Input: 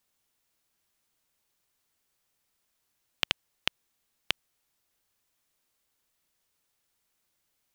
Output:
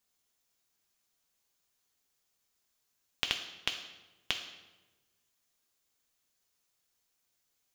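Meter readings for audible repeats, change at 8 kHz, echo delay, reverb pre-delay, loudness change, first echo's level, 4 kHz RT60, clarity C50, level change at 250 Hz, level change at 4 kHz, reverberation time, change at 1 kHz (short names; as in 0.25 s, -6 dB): none, +0.5 dB, none, 3 ms, -2.5 dB, none, 0.75 s, 8.5 dB, -3.5 dB, -2.0 dB, 1.1 s, -3.0 dB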